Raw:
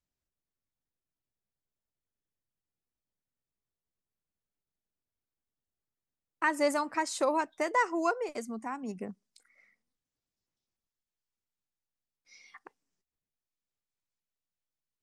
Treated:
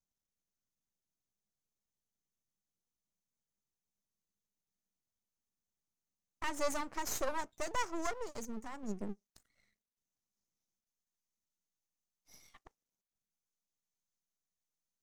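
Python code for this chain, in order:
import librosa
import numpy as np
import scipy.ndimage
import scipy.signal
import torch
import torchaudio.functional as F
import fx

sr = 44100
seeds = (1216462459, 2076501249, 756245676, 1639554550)

y = fx.graphic_eq_31(x, sr, hz=(200, 1600, 2500, 6300), db=(9, -7, -11, 12))
y = np.maximum(y, 0.0)
y = F.gain(torch.from_numpy(y), -2.5).numpy()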